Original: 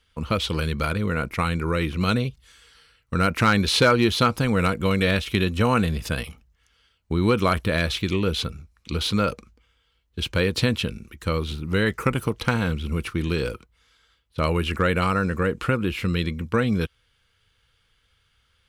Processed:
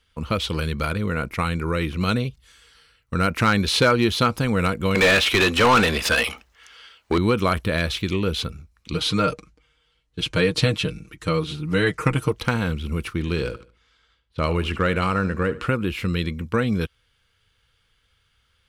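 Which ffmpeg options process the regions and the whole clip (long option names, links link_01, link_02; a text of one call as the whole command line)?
ffmpeg -i in.wav -filter_complex "[0:a]asettb=1/sr,asplit=3[link_01][link_02][link_03];[link_01]atrim=end=4.954[link_04];[link_02]atrim=start=4.95:end=7.18,asetpts=PTS-STARTPTS,afade=type=in:duration=0.004:curve=qsin,afade=type=out:start_time=2.226:duration=0.004:curve=qsin,equalizer=frequency=140:width=1.5:gain=-10.5,asplit=2[link_05][link_06];[link_06]highpass=frequency=720:poles=1,volume=25dB,asoftclip=type=tanh:threshold=-8dB[link_07];[link_05][link_07]amix=inputs=2:normalize=0,lowpass=frequency=3900:poles=1,volume=-6dB[link_08];[link_03]atrim=start=7.176[link_09];[link_04][link_08]acrossfade=duration=0.004:curve1=hsin:curve2=qsin[link_10];[link_10][link_09]acrossfade=duration=0.004:curve1=qsin:curve2=hsin,asettb=1/sr,asplit=3[link_11][link_12][link_13];[link_11]atrim=end=8.934[link_14];[link_12]atrim=start=8.93:end=12.32,asetpts=PTS-STARTPTS,afade=type=in:duration=0.004:curve=qsin,afade=type=out:start_time=3.386:duration=0.004:curve=qsin,lowpass=frequency=11000:width=0.5412,lowpass=frequency=11000:width=1.3066,aecho=1:1:6.5:0.79,atrim=end_sample=149499[link_15];[link_13]atrim=start=12.316[link_16];[link_14][link_15]acrossfade=duration=0.004:curve1=hsin:curve2=qsin[link_17];[link_17][link_16]acrossfade=duration=0.004:curve1=qsin:curve2=hsin,asettb=1/sr,asplit=3[link_18][link_19][link_20];[link_18]atrim=end=13.184[link_21];[link_19]atrim=start=13.18:end=15.67,asetpts=PTS-STARTPTS,afade=type=in:duration=0.004:curve=qsin,afade=type=out:start_time=2.486:duration=0.004:curve=qsin,adynamicsmooth=sensitivity=7:basefreq=7100,aecho=1:1:72|144|216:0.158|0.0523|0.0173,atrim=end_sample=109809[link_22];[link_20]atrim=start=15.666[link_23];[link_21][link_22]acrossfade=duration=0.004:curve1=hsin:curve2=qsin[link_24];[link_24][link_23]acrossfade=duration=0.004:curve1=qsin:curve2=hsin" out.wav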